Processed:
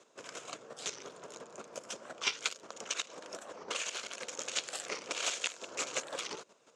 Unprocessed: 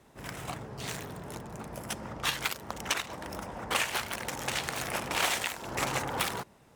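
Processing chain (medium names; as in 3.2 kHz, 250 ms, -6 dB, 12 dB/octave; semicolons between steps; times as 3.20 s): square tremolo 5.7 Hz, depth 60%, duty 20%; dynamic bell 1 kHz, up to -5 dB, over -48 dBFS, Q 1.2; in parallel at -3 dB: compression, threshold -44 dBFS, peak gain reduction 16 dB; on the sum: cabinet simulation 470–7500 Hz, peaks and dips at 490 Hz +4 dB, 830 Hz -10 dB, 1.9 kHz -9 dB, 6.8 kHz +8 dB; warped record 45 rpm, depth 250 cents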